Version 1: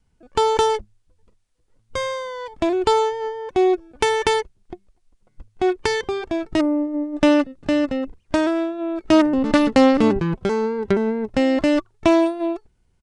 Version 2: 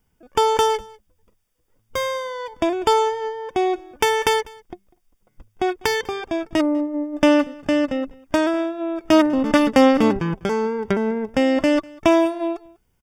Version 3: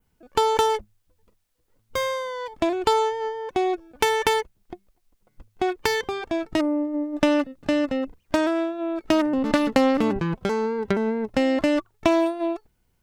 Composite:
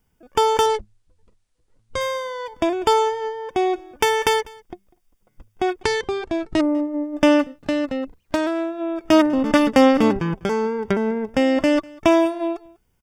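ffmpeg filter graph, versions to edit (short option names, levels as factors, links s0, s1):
-filter_complex "[0:a]asplit=2[s0][s1];[1:a]asplit=4[s2][s3][s4][s5];[s2]atrim=end=0.662[s6];[s0]atrim=start=0.658:end=2.012[s7];[s3]atrim=start=2.008:end=5.832[s8];[s1]atrim=start=5.828:end=6.692[s9];[s4]atrim=start=6.688:end=7.6[s10];[2:a]atrim=start=7.36:end=8.8[s11];[s5]atrim=start=8.56[s12];[s6][s7]acrossfade=d=0.004:c1=hsin:c2=hsin[s13];[s13][s8]acrossfade=d=0.004:c1=hsin:c2=hsin[s14];[s14][s9]acrossfade=d=0.004:c1=hsin:c2=hsin[s15];[s15][s10]acrossfade=d=0.004:c1=hsin:c2=hsin[s16];[s16][s11]acrossfade=d=0.24:c1=tri:c2=tri[s17];[s17][s12]acrossfade=d=0.24:c1=tri:c2=tri"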